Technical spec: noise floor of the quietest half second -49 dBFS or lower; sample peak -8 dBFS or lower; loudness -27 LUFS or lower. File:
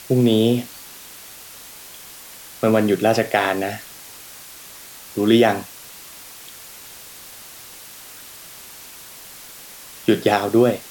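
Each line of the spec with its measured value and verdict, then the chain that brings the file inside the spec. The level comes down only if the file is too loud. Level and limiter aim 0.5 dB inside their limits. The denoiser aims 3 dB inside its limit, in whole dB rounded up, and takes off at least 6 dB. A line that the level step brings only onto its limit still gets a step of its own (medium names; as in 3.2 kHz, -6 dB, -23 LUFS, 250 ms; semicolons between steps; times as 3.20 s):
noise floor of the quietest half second -40 dBFS: fail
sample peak -4.0 dBFS: fail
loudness -18.5 LUFS: fail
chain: noise reduction 6 dB, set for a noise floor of -40 dBFS; trim -9 dB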